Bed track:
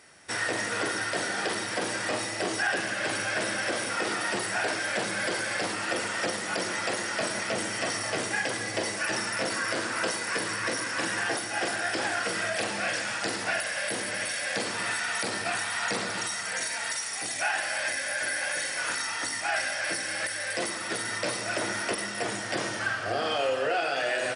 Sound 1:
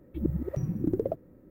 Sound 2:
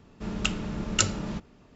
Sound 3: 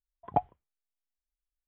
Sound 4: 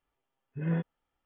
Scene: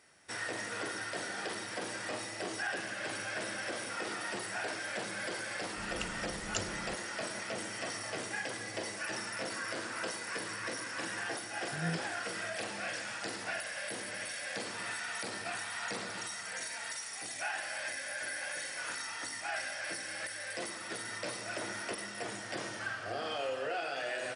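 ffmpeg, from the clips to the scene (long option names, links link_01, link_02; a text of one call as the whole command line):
ffmpeg -i bed.wav -i cue0.wav -i cue1.wav -i cue2.wav -i cue3.wav -filter_complex "[0:a]volume=-9dB[link_01];[4:a]aeval=exprs='sgn(val(0))*max(abs(val(0))-0.002,0)':channel_layout=same[link_02];[2:a]atrim=end=1.75,asetpts=PTS-STARTPTS,volume=-13.5dB,afade=type=in:duration=0.004:curve=hsin,afade=type=out:start_time=1.746:duration=0.004:curve=hsin,adelay=5560[link_03];[link_02]atrim=end=1.25,asetpts=PTS-STARTPTS,volume=-6.5dB,afade=type=in:duration=0.004:curve=hsin,afade=type=out:start_time=1.246:duration=0.004:curve=hsin,adelay=11160[link_04];[link_01][link_03][link_04]amix=inputs=3:normalize=0" out.wav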